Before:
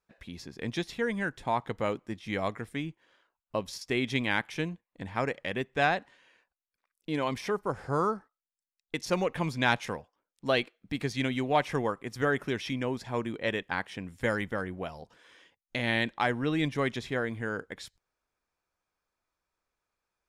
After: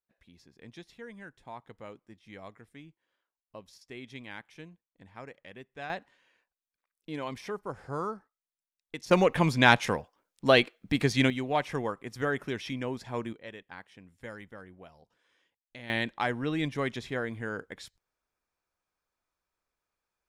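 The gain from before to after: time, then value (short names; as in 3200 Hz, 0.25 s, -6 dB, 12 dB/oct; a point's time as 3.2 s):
-15 dB
from 5.9 s -6 dB
from 9.11 s +6 dB
from 11.3 s -2.5 dB
from 13.33 s -14 dB
from 15.9 s -2 dB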